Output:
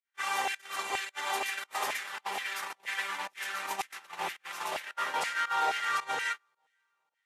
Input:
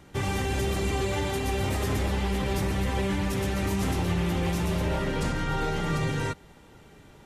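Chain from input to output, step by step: echo that smears into a reverb 529 ms, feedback 55%, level -11 dB; 2.61–4.15 s: compressor with a negative ratio -26 dBFS, ratio -0.5; LFO high-pass saw down 2.1 Hz 760–2100 Hz; volume shaper 110 bpm, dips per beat 1, -19 dB, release 121 ms; gate -32 dBFS, range -34 dB

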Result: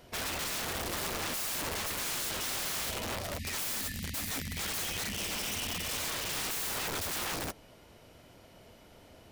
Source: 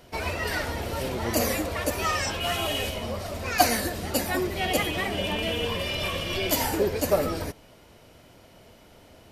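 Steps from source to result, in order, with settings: spectral selection erased 3.39–5.93 s, 290–1700 Hz; integer overflow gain 26.5 dB; trim -3.5 dB

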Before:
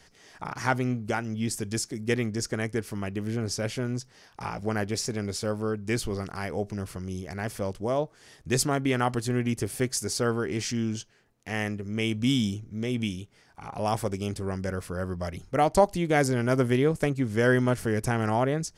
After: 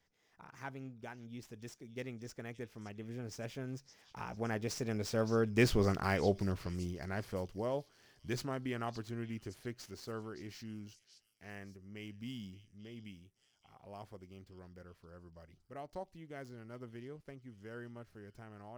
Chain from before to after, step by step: median filter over 5 samples; Doppler pass-by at 5.91 s, 19 m/s, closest 9.4 m; repeats whose band climbs or falls 567 ms, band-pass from 4.4 kHz, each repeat 0.7 oct, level -9 dB; trim +1.5 dB

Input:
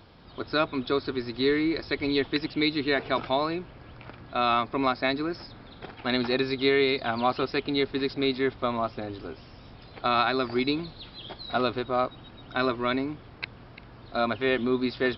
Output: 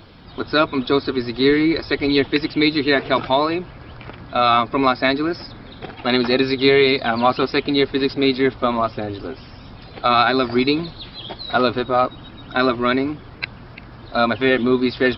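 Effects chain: coarse spectral quantiser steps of 15 dB; trim +9 dB

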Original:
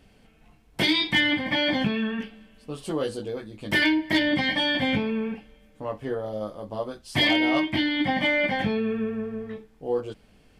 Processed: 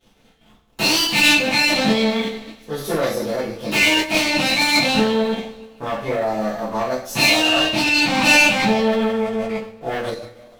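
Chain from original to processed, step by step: waveshaping leveller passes 3; two-slope reverb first 0.42 s, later 1.7 s, DRR -9.5 dB; formant shift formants +4 st; trim -9 dB

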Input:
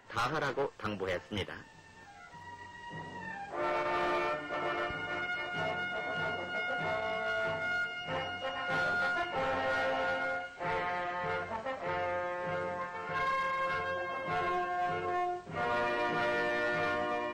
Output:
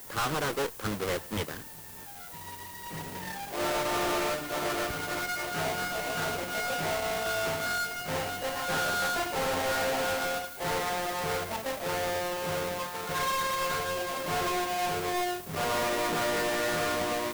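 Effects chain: square wave that keeps the level; added noise violet -44 dBFS; loudspeaker Doppler distortion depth 0.27 ms

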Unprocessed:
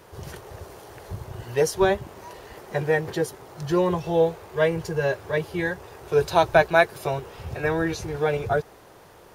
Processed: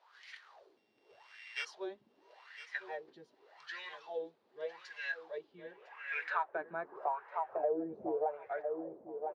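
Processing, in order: 0.77–1.65 s: sorted samples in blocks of 16 samples; wah-wah 0.85 Hz 220–2100 Hz, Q 6.2; on a send: feedback delay 1005 ms, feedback 15%, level -14 dB; on the sum: band-pass sweep 4.1 kHz -> 590 Hz, 5.39–7.74 s; compression 3:1, threshold -48 dBFS, peak gain reduction 13 dB; trim +14 dB

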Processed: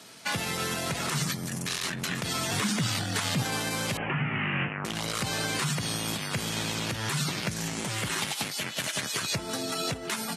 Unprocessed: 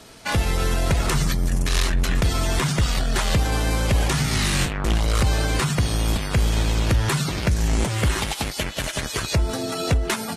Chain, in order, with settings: 2.51–3.42 s: frequency shift +59 Hz; high-pass 140 Hz 24 dB/octave; peaking EQ 420 Hz -6.5 dB 2.7 oct; 3.97–4.85 s: steep low-pass 2.9 kHz 96 dB/octave; peak limiter -16.5 dBFS, peak gain reduction 9.5 dB; trim -1 dB

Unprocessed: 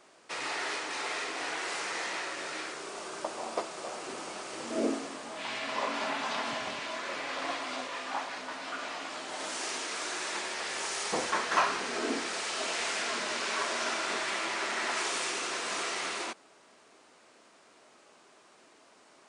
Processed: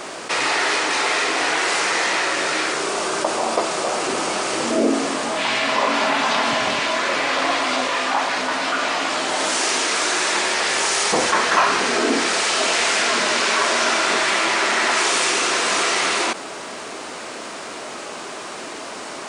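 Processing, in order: level flattener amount 50%; trim +8.5 dB

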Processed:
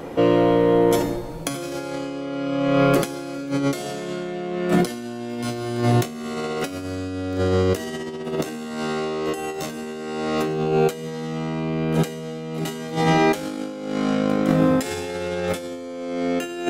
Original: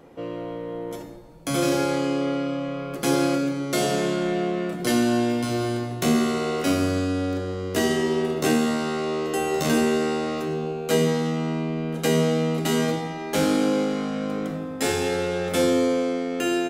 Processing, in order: hum notches 50/100/150/200/250 Hz; peak limiter -15 dBFS, peak gain reduction 5.5 dB; compressor with a negative ratio -31 dBFS, ratio -0.5; trim +9 dB

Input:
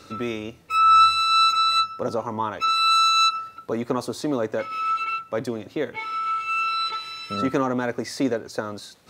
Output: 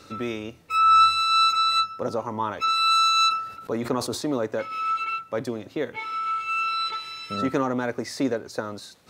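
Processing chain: 2.33–4.38 s: decay stretcher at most 84 dB/s; trim -1.5 dB

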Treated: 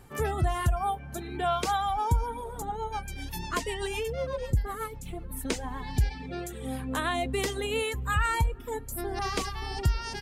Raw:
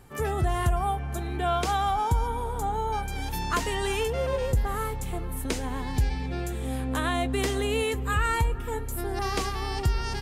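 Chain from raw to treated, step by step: reverb removal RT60 1.9 s; 2.62–5.31 s: rotary cabinet horn 8 Hz

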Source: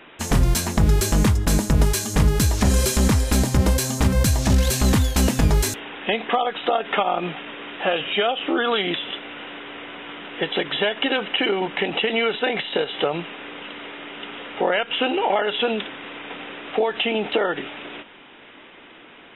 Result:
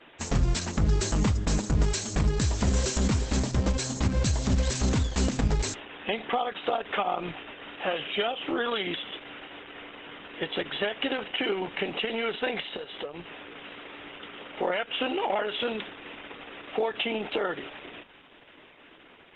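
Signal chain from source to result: 12.65–13.77 s: compression 6:1, threshold -26 dBFS, peak gain reduction 9.5 dB; trim -6.5 dB; Opus 10 kbps 48 kHz

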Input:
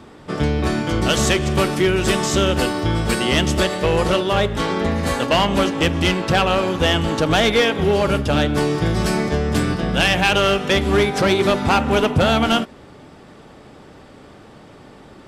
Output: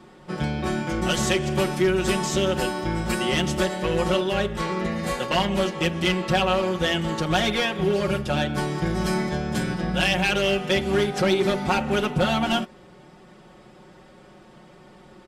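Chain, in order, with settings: comb 5.5 ms, depth 98%; trim -8.5 dB

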